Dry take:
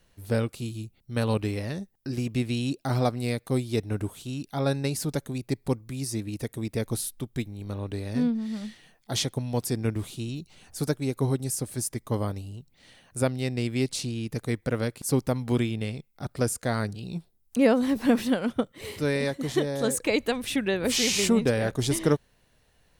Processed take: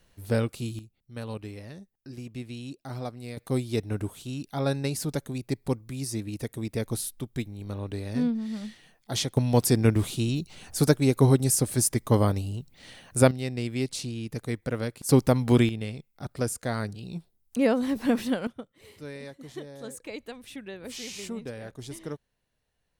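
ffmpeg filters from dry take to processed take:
-af "asetnsamples=n=441:p=0,asendcmd='0.79 volume volume -10.5dB;3.37 volume volume -1dB;9.37 volume volume 6.5dB;13.31 volume volume -2.5dB;15.09 volume volume 5dB;15.69 volume volume -2.5dB;18.47 volume volume -14dB',volume=0.5dB"

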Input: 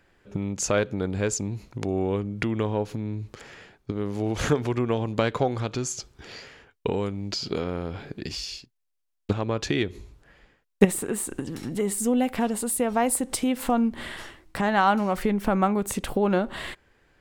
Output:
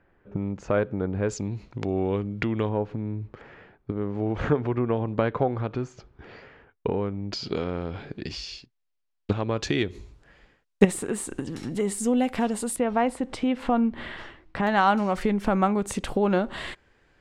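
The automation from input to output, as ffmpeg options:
-af "asetnsamples=n=441:p=0,asendcmd='1.29 lowpass f 4300;2.69 lowpass f 1800;7.33 lowpass f 4800;9.56 lowpass f 8500;12.76 lowpass f 3200;14.67 lowpass f 8100',lowpass=1.6k"

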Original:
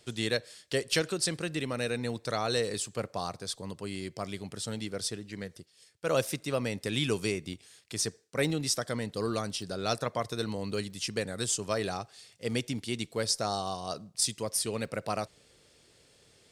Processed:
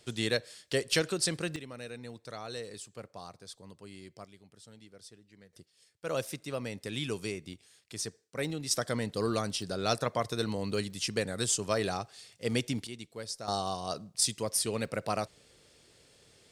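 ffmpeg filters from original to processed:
-af "asetnsamples=n=441:p=0,asendcmd='1.56 volume volume -11dB;4.25 volume volume -18dB;5.53 volume volume -5.5dB;8.71 volume volume 1dB;12.87 volume volume -10dB;13.48 volume volume 0.5dB',volume=0dB"

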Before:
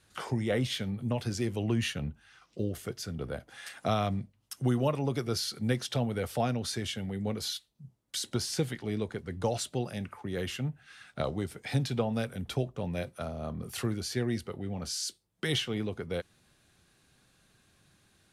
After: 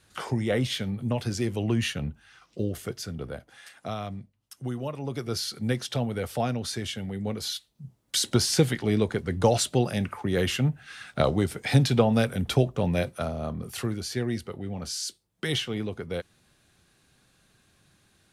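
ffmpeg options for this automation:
-af "volume=17.5dB,afade=t=out:st=2.91:d=0.8:silence=0.375837,afade=t=in:st=4.93:d=0.48:silence=0.446684,afade=t=in:st=7.43:d=0.74:silence=0.446684,afade=t=out:st=12.88:d=0.85:silence=0.446684"

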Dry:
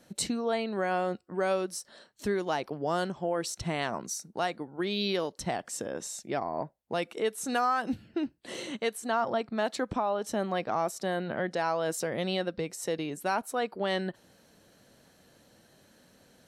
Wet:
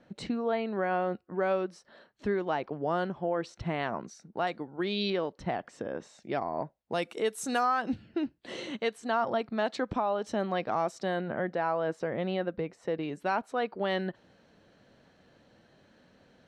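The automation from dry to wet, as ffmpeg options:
-af "asetnsamples=n=441:p=0,asendcmd='4.47 lowpass f 5000;5.1 lowpass f 2400;6.22 lowpass f 4500;6.92 lowpass f 11000;7.63 lowpass f 4700;11.21 lowpass f 2000;13.03 lowpass f 3400',lowpass=2.5k"

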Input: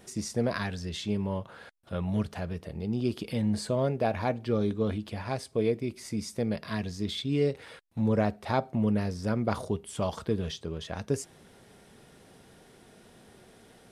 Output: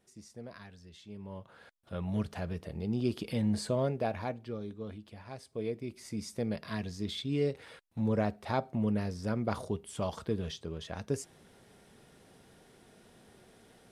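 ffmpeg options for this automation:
-af "volume=7dB,afade=t=in:st=1.09:d=0.52:silence=0.316228,afade=t=in:st=1.61:d=0.88:silence=0.501187,afade=t=out:st=3.69:d=0.91:silence=0.281838,afade=t=in:st=5.3:d=1.04:silence=0.354813"

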